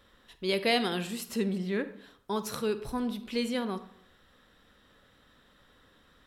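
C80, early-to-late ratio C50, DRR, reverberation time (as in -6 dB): 16.5 dB, 13.5 dB, 12.0 dB, 0.70 s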